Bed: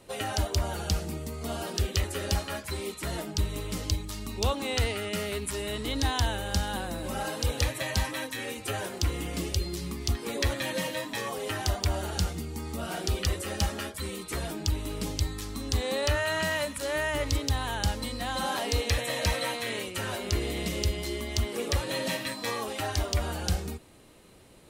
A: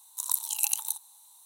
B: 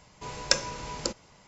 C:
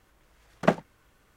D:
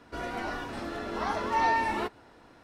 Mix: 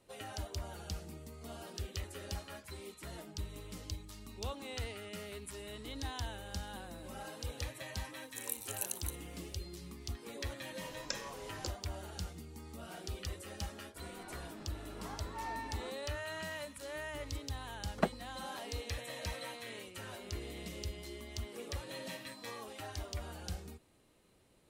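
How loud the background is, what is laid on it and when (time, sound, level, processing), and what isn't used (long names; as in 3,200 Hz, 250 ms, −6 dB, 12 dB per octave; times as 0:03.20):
bed −13.5 dB
0:08.18: mix in A −12 dB
0:10.59: mix in B −13 dB + brickwall limiter −5 dBFS
0:13.83: mix in D −16.5 dB
0:17.35: mix in C −9 dB + spectral dynamics exaggerated over time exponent 1.5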